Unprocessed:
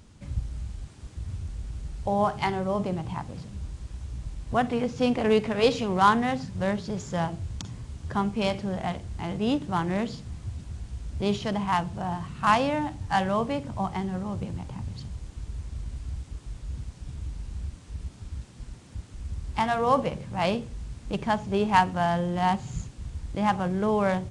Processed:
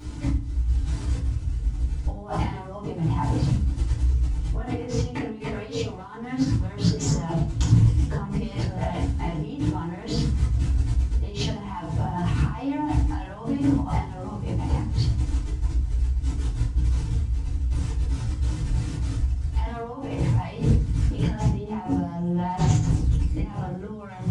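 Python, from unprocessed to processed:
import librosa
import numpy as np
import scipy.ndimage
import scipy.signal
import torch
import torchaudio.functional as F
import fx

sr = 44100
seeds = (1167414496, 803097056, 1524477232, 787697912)

y = fx.low_shelf(x, sr, hz=120.0, db=4.0)
y = fx.over_compress(y, sr, threshold_db=-37.0, ratio=-1.0)
y = fx.chorus_voices(y, sr, voices=4, hz=0.5, base_ms=17, depth_ms=2.5, mix_pct=55)
y = fx.rev_fdn(y, sr, rt60_s=0.37, lf_ratio=1.4, hf_ratio=0.75, size_ms=20.0, drr_db=-8.0)
y = fx.doppler_dist(y, sr, depth_ms=0.22)
y = y * librosa.db_to_amplitude(1.5)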